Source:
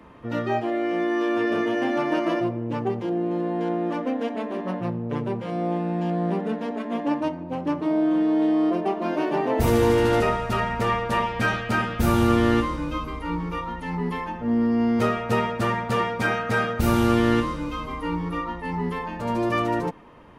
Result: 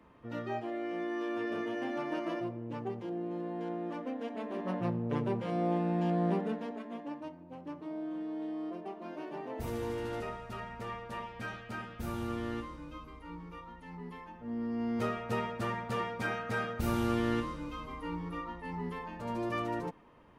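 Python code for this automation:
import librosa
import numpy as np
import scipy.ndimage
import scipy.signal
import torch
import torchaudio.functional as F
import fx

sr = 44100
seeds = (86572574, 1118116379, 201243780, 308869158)

y = fx.gain(x, sr, db=fx.line((4.22, -12.0), (4.84, -5.0), (6.32, -5.0), (7.13, -17.5), (14.29, -17.5), (15.01, -11.0)))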